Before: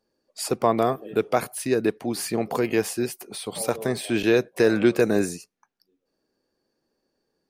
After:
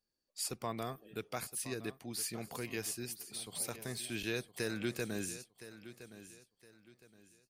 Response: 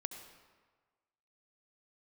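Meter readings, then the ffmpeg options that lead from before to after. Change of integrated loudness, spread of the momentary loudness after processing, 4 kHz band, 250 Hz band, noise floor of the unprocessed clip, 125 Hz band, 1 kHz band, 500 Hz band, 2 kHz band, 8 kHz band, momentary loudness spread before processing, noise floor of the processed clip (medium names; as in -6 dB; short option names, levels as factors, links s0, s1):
-15.5 dB, 15 LU, -8.5 dB, -18.0 dB, -78 dBFS, -12.0 dB, -18.0 dB, -20.5 dB, -13.0 dB, -6.5 dB, 10 LU, -84 dBFS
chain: -af "equalizer=f=510:w=0.32:g=-15,aecho=1:1:1015|2030|3045:0.188|0.0584|0.0181,volume=0.501"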